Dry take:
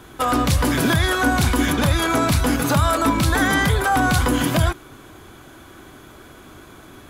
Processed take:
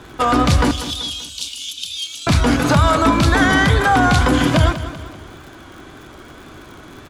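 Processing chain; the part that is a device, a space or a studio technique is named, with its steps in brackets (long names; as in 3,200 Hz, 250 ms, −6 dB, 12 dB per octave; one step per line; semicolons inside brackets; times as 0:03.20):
0:00.71–0:02.27: elliptic high-pass filter 2,900 Hz, stop band 40 dB
lo-fi chain (low-pass filter 6,600 Hz 12 dB per octave; tape wow and flutter; surface crackle 77 per second −37 dBFS)
repeating echo 193 ms, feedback 45%, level −13 dB
level +4 dB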